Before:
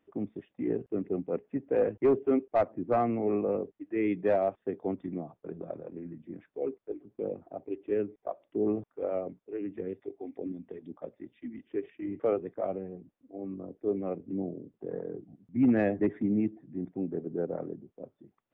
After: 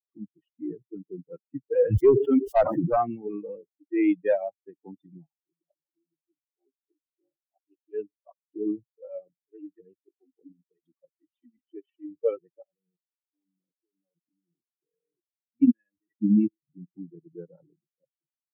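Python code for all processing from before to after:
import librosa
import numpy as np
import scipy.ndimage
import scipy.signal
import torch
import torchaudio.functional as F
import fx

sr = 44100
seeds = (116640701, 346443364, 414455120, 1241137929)

y = fx.chain(x, sr, fx.high_shelf(hz=2900.0, db=3.0),
    fx.sustainer(db_per_s=25.0), at=(1.82, 2.9))
y = fx.chain(y, sr, fx.highpass(hz=99.0, slope=12),
    fx.low_shelf(hz=350.0, db=-9.0),
    fx.fixed_phaser(hz=320.0, stages=8), at=(5.26, 7.94))
y = fx.chain(y, sr, fx.highpass(hz=150.0, slope=6),
    fx.level_steps(step_db=23), at=(12.62, 16.22))
y = fx.bin_expand(y, sr, power=3.0)
y = fx.low_shelf(y, sr, hz=250.0, db=9.0)
y = y * 10.0 ** (7.0 / 20.0)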